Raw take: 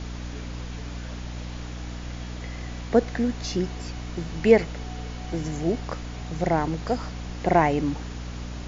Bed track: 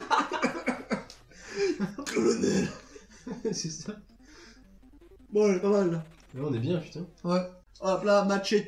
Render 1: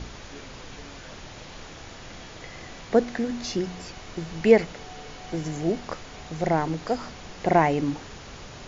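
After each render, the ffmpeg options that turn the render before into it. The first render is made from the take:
-af "bandreject=f=60:t=h:w=4,bandreject=f=120:t=h:w=4,bandreject=f=180:t=h:w=4,bandreject=f=240:t=h:w=4,bandreject=f=300:t=h:w=4"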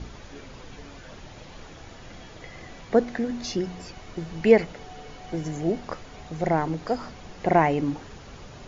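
-af "afftdn=nr=6:nf=-43"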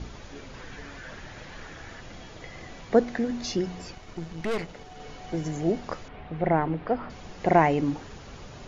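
-filter_complex "[0:a]asettb=1/sr,asplit=3[a][b][c];[a]atrim=end=0.544[d];[b]atrim=start=0.54:end=2.01,asetpts=PTS-STARTPTS,afade=t=in:d=0.004:c=qsin,afade=t=out:st=1.466:d=0.004:c=qsin,equalizer=f=1.7k:w=2.1:g=9[e];[c]atrim=start=2.006[f];[d][e]acrossfade=d=0.004:c1=hsin:c2=qsin[g];[g][f]acrossfade=d=0.004:c1=qsin:c2=hsin,asettb=1/sr,asplit=3[h][i][j];[h]atrim=end=3.954[k];[i]atrim=start=3.95:end=5,asetpts=PTS-STARTPTS,afade=t=in:d=0.004:c=qsin,afade=t=out:st=1.046:d=0.004:c=qsin,aeval=exprs='(tanh(20*val(0)+0.6)-tanh(0.6))/20':c=same[l];[j]atrim=start=4.996[m];[k][l]acrossfade=d=0.004:c1=hsin:c2=qsin[n];[n][m]acrossfade=d=0.004:c1=qsin:c2=hsin,asettb=1/sr,asplit=3[o][p][q];[o]atrim=end=6.084[r];[p]atrim=start=6.08:end=7.1,asetpts=PTS-STARTPTS,afade=t=in:d=0.004:c=qsin,afade=t=out:st=1.016:d=0.004:c=qsin,lowpass=f=3k:w=0.5412,lowpass=f=3k:w=1.3066[s];[q]atrim=start=7.096[t];[r][s]acrossfade=d=0.004:c1=hsin:c2=qsin[u];[u][t]acrossfade=d=0.004:c1=qsin:c2=hsin"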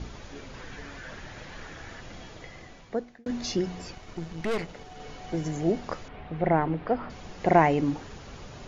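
-filter_complex "[0:a]asplit=2[a][b];[a]atrim=end=3.26,asetpts=PTS-STARTPTS,afade=t=out:st=2.25:d=1.01[c];[b]atrim=start=3.26,asetpts=PTS-STARTPTS,afade=t=in:d=0.004:c=hsin[d];[c][d]concat=n=2:v=0:a=1"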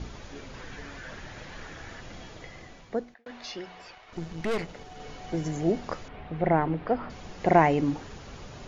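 -filter_complex "[0:a]asettb=1/sr,asplit=3[a][b][c];[a]atrim=end=3.144[d];[b]atrim=start=3.14:end=4.13,asetpts=PTS-STARTPTS,afade=t=in:d=0.004:c=qsin,afade=t=out:st=0.986:d=0.004:c=qsin,acrossover=split=550 4300:gain=0.126 1 0.141[e][f][g];[e][f][g]amix=inputs=3:normalize=0[h];[c]atrim=start=4.126[i];[d][h]acrossfade=d=0.004:c1=hsin:c2=qsin[j];[j][i]acrossfade=d=0.004:c1=qsin:c2=hsin"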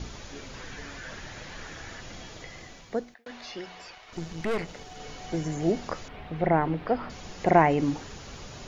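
-filter_complex "[0:a]acrossover=split=2500[a][b];[b]acompressor=threshold=-50dB:ratio=4:attack=1:release=60[c];[a][c]amix=inputs=2:normalize=0,highshelf=f=3.6k:g=10"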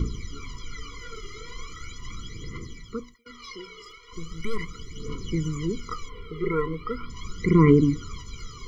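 -af "aphaser=in_gain=1:out_gain=1:delay=2.5:decay=0.76:speed=0.39:type=triangular,afftfilt=real='re*eq(mod(floor(b*sr/1024/480),2),0)':imag='im*eq(mod(floor(b*sr/1024/480),2),0)':win_size=1024:overlap=0.75"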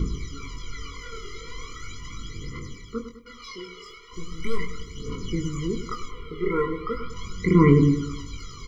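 -filter_complex "[0:a]asplit=2[a][b];[b]adelay=22,volume=-5dB[c];[a][c]amix=inputs=2:normalize=0,asplit=2[d][e];[e]adelay=102,lowpass=f=2.8k:p=1,volume=-11dB,asplit=2[f][g];[g]adelay=102,lowpass=f=2.8k:p=1,volume=0.51,asplit=2[h][i];[i]adelay=102,lowpass=f=2.8k:p=1,volume=0.51,asplit=2[j][k];[k]adelay=102,lowpass=f=2.8k:p=1,volume=0.51,asplit=2[l][m];[m]adelay=102,lowpass=f=2.8k:p=1,volume=0.51[n];[d][f][h][j][l][n]amix=inputs=6:normalize=0"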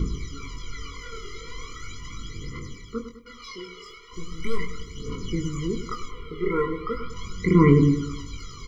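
-af anull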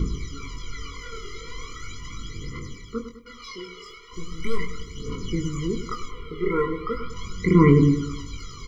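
-af "volume=1dB,alimiter=limit=-3dB:level=0:latency=1"

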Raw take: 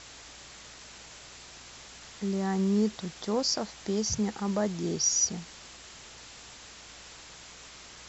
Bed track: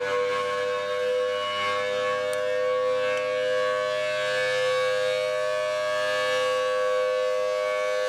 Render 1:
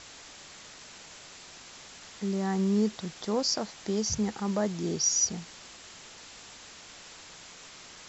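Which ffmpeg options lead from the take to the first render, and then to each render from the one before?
-af "bandreject=f=60:t=h:w=4,bandreject=f=120:t=h:w=4"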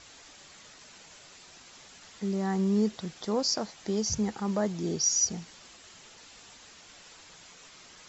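-af "afftdn=nr=6:nf=-49"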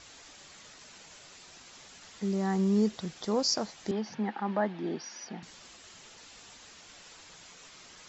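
-filter_complex "[0:a]asettb=1/sr,asplit=3[a][b][c];[a]atrim=end=3.914[d];[b]atrim=start=3.91:end=5.43,asetpts=PTS-STARTPTS,afade=t=in:d=0.004:c=qsin,afade=t=out:st=1.516:d=0.004:c=qsin,highpass=f=210:w=0.5412,highpass=f=210:w=1.3066,equalizer=f=450:t=q:w=4:g=-6,equalizer=f=830:t=q:w=4:g=6,equalizer=f=1.7k:t=q:w=4:g=6,lowpass=f=3.4k:w=0.5412,lowpass=f=3.4k:w=1.3066[e];[c]atrim=start=5.426[f];[d][e]acrossfade=d=0.004:c1=hsin:c2=qsin[g];[g][f]acrossfade=d=0.004:c1=qsin:c2=hsin"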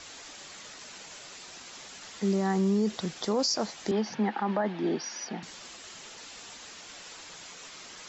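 -filter_complex "[0:a]acrossover=split=190[a][b];[b]acontrast=53[c];[a][c]amix=inputs=2:normalize=0,alimiter=limit=-19dB:level=0:latency=1:release=44"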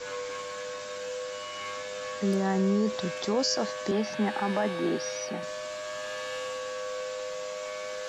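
-filter_complex "[1:a]volume=-11dB[a];[0:a][a]amix=inputs=2:normalize=0"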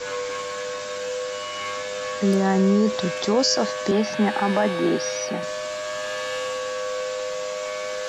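-af "volume=7dB"

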